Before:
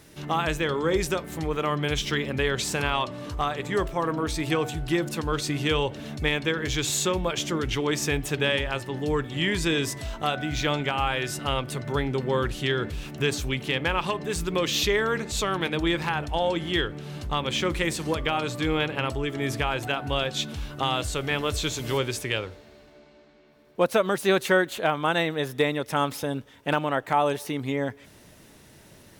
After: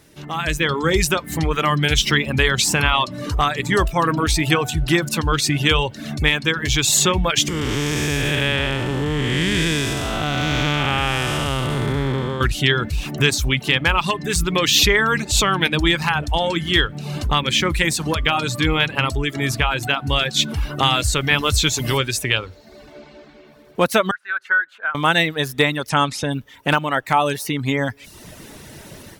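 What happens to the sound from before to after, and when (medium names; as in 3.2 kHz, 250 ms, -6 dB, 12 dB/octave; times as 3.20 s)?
7.48–12.41 s: spectral blur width 434 ms
24.11–24.95 s: band-pass filter 1.5 kHz, Q 8.7
25.89–26.32 s: low-pass 9 kHz 24 dB/octave
whole clip: reverb removal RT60 0.64 s; dynamic bell 490 Hz, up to -8 dB, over -39 dBFS, Q 0.72; level rider gain up to 14 dB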